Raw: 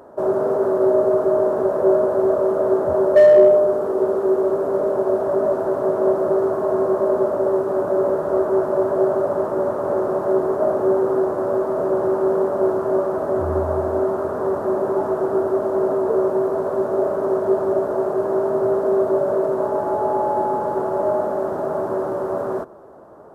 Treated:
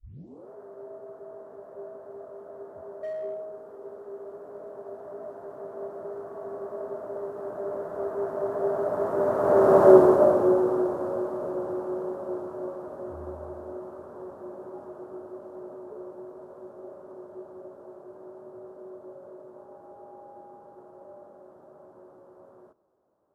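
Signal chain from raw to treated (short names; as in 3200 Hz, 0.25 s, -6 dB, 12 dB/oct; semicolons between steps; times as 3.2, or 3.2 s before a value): tape start at the beginning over 0.52 s; Doppler pass-by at 9.87, 14 m/s, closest 3.2 m; gain +6 dB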